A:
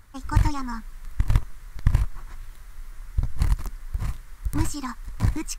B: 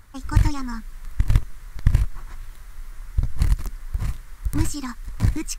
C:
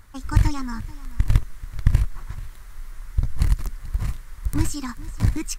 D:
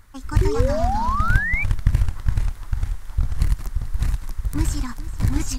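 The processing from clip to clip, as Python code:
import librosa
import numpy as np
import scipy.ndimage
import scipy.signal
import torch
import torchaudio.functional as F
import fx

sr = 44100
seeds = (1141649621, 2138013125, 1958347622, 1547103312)

y1 = fx.dynamic_eq(x, sr, hz=940.0, q=1.3, threshold_db=-47.0, ratio=4.0, max_db=-6)
y1 = y1 * librosa.db_to_amplitude(2.5)
y2 = y1 + 10.0 ** (-18.5 / 20.0) * np.pad(y1, (int(435 * sr / 1000.0), 0))[:len(y1)]
y3 = fx.echo_pitch(y2, sr, ms=188, semitones=-2, count=3, db_per_echo=-3.0)
y3 = fx.spec_paint(y3, sr, seeds[0], shape='rise', start_s=0.41, length_s=1.23, low_hz=360.0, high_hz=2400.0, level_db=-23.0)
y3 = y3 * librosa.db_to_amplitude(-1.0)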